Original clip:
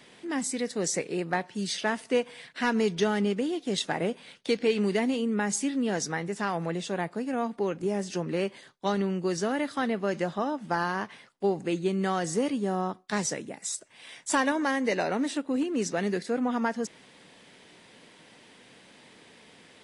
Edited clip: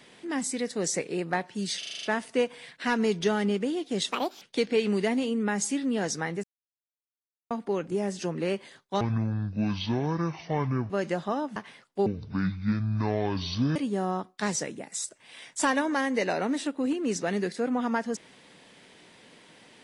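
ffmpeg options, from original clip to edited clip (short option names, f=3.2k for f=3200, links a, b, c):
-filter_complex "[0:a]asplit=16[a][b][c][d][e][f][g][h][i][j][k][l][m][n][o][p];[a]atrim=end=1.832[q];[b]atrim=start=1.788:end=1.832[r];[c]atrim=start=1.788:end=1.832[s];[d]atrim=start=1.788:end=1.832[t];[e]atrim=start=1.788:end=1.832[u];[f]atrim=start=1.788:end=1.832[v];[g]atrim=start=1.788:end=3.884[w];[h]atrim=start=3.88:end=4.33,asetpts=PTS-STARTPTS,asetrate=67032,aresample=44100[x];[i]atrim=start=4.326:end=6.35,asetpts=PTS-STARTPTS,afade=t=out:st=2.02:d=0.004:c=hsin[y];[j]atrim=start=6.35:end=7.42,asetpts=PTS-STARTPTS,volume=0[z];[k]atrim=start=7.42:end=8.924,asetpts=PTS-STARTPTS,afade=t=in:d=0.004:c=hsin[aa];[l]atrim=start=8.92:end=10,asetpts=PTS-STARTPTS,asetrate=25137,aresample=44100[ab];[m]atrim=start=9.996:end=10.662[ac];[n]atrim=start=11.008:end=11.514[ad];[o]atrim=start=11.51:end=12.46,asetpts=PTS-STARTPTS,asetrate=24696,aresample=44100,atrim=end_sample=74812,asetpts=PTS-STARTPTS[ae];[p]atrim=start=12.456[af];[q][r]acrossfade=d=0.004:c1=hsin:c2=hsin[ag];[ag][s]acrossfade=d=0.004:c1=hsin:c2=hsin[ah];[ah][t]acrossfade=d=0.004:c1=hsin:c2=hsin[ai];[ai][u]acrossfade=d=0.004:c1=hsin:c2=hsin[aj];[aj][v]acrossfade=d=0.004:c1=hsin:c2=hsin[ak];[ak][w]acrossfade=d=0.004:c1=hsin:c2=hsin[al];[al][x]acrossfade=d=0.004:c1=hsin:c2=hsin[am];[y][z][aa]concat=n=3:v=0:a=1[an];[am][an]acrossfade=d=0.004:c1=hsin:c2=hsin[ao];[ao][ab]acrossfade=d=0.004:c1=hsin:c2=hsin[ap];[ap][ac]acrossfade=d=0.004:c1=hsin:c2=hsin[aq];[aq][ad]acrossfade=d=0.004:c1=hsin:c2=hsin[ar];[ar][ae]acrossfade=d=0.004:c1=hsin:c2=hsin[as];[as][af]acrossfade=d=0.004:c1=hsin:c2=hsin"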